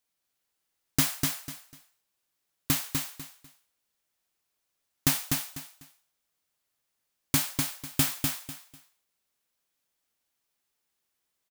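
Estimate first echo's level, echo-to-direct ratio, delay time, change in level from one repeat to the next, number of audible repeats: -4.0 dB, -3.5 dB, 248 ms, -12.5 dB, 3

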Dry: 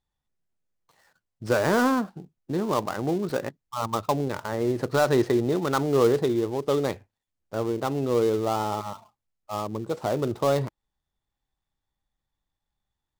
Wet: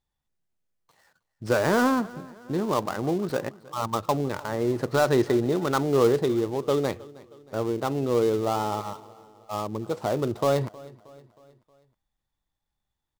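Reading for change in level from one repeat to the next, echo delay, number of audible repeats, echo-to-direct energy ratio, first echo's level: -6.0 dB, 315 ms, 3, -20.0 dB, -21.5 dB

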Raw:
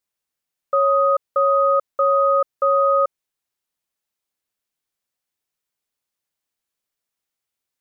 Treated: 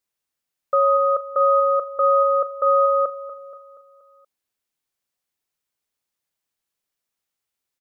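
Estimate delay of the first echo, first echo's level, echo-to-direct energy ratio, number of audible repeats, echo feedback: 238 ms, -13.0 dB, -11.5 dB, 4, 50%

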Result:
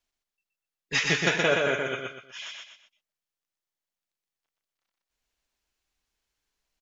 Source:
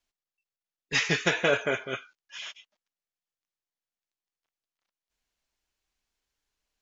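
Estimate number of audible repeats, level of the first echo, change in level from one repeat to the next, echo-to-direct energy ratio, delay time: 3, -3.5 dB, -9.0 dB, -3.0 dB, 122 ms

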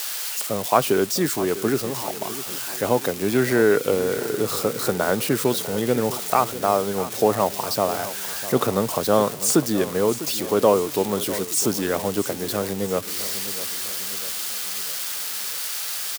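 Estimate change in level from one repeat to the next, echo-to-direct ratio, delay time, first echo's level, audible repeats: -5.5 dB, -13.0 dB, 651 ms, -14.5 dB, 4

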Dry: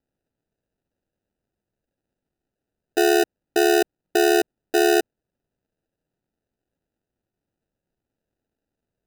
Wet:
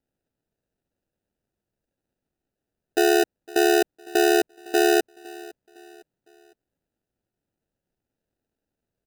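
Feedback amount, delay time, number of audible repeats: 40%, 508 ms, 2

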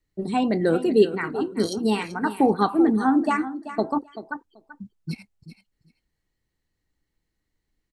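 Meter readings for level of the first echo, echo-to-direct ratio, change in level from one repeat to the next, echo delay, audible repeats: -13.0 dB, -13.0 dB, -16.5 dB, 385 ms, 2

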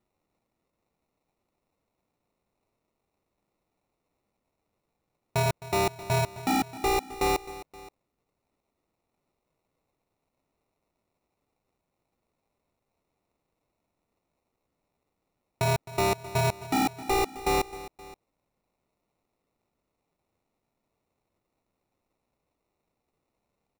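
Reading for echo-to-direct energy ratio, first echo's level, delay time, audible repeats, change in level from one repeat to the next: -15.5 dB, -16.5 dB, 262 ms, 2, -5.0 dB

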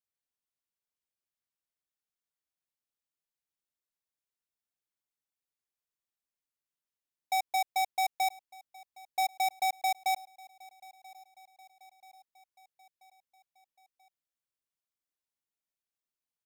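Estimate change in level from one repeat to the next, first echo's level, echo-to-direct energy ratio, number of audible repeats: -4.5 dB, -22.5 dB, -21.0 dB, 3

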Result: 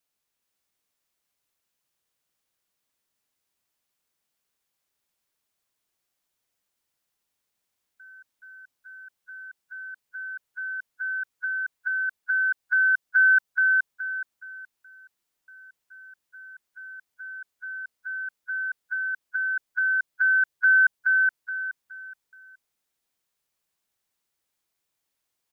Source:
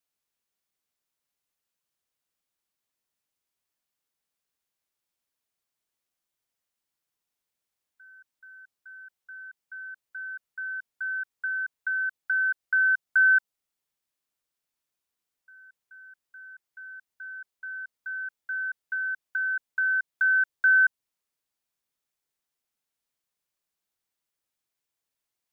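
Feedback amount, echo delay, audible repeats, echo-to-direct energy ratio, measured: 31%, 422 ms, 4, -3.5 dB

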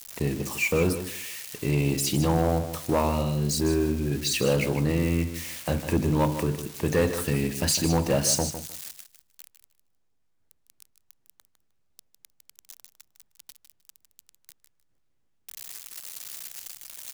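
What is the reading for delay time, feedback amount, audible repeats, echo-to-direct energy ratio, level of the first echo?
154 ms, 19%, 2, -10.5 dB, -10.5 dB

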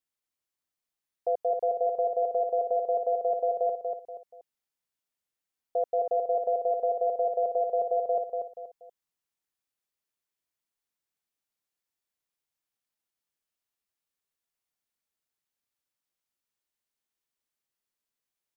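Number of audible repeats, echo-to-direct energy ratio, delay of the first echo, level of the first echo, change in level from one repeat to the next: 3, -4.5 dB, 239 ms, -5.0 dB, -9.0 dB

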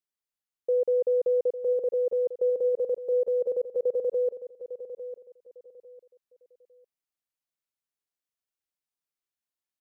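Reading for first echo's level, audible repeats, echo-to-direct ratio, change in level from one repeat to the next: -12.0 dB, 3, -11.5 dB, -11.5 dB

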